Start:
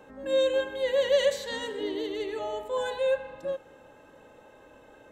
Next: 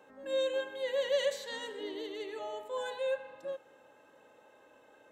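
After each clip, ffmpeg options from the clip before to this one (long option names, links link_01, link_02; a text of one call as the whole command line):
ffmpeg -i in.wav -af "highpass=frequency=380:poles=1,volume=-5.5dB" out.wav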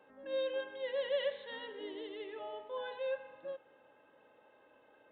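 ffmpeg -i in.wav -af "aresample=8000,aresample=44100,volume=-4dB" out.wav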